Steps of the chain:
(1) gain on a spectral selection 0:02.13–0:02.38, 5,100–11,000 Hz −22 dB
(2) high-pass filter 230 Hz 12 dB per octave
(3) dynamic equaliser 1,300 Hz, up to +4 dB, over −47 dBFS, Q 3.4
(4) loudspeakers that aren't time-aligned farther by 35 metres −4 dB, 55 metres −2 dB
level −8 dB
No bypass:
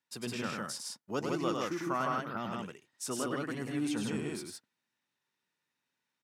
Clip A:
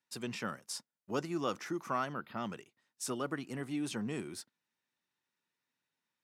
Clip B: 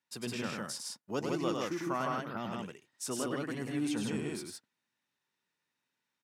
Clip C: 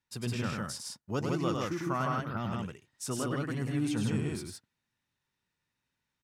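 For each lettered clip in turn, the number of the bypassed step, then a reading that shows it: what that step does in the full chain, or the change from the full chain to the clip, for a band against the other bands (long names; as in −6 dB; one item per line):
4, echo-to-direct ratio 0.0 dB to none audible
3, 1 kHz band −2.0 dB
2, 125 Hz band +9.5 dB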